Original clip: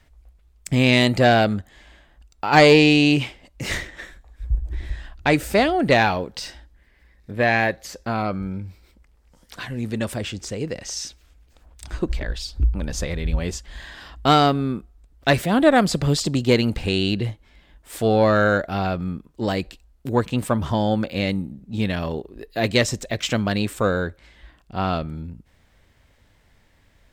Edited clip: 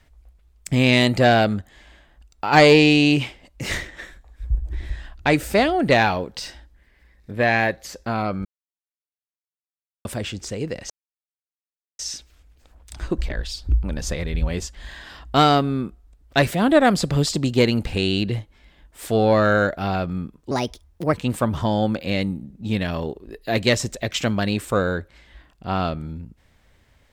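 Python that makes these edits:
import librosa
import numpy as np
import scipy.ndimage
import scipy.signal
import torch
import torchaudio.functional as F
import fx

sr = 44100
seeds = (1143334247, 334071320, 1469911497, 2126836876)

y = fx.edit(x, sr, fx.silence(start_s=8.45, length_s=1.6),
    fx.insert_silence(at_s=10.9, length_s=1.09),
    fx.speed_span(start_s=19.42, length_s=0.8, speed=1.28), tone=tone)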